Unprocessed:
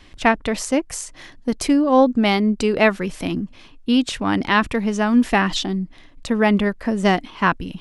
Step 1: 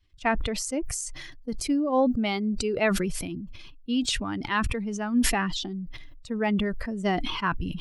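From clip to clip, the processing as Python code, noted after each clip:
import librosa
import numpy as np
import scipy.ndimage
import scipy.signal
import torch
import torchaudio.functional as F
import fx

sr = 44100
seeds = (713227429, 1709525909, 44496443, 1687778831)

y = fx.bin_expand(x, sr, power=1.5)
y = fx.sustainer(y, sr, db_per_s=31.0)
y = F.gain(torch.from_numpy(y), -7.5).numpy()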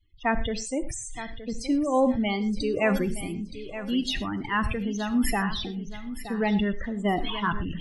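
y = fx.spec_topn(x, sr, count=32)
y = fx.echo_feedback(y, sr, ms=921, feedback_pct=24, wet_db=-12.5)
y = fx.rev_gated(y, sr, seeds[0], gate_ms=140, shape='flat', drr_db=11.5)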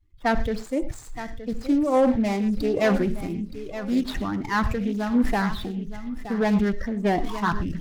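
y = scipy.ndimage.median_filter(x, 15, mode='constant')
y = np.clip(y, -10.0 ** (-17.0 / 20.0), 10.0 ** (-17.0 / 20.0))
y = fx.doppler_dist(y, sr, depth_ms=0.28)
y = F.gain(torch.from_numpy(y), 3.5).numpy()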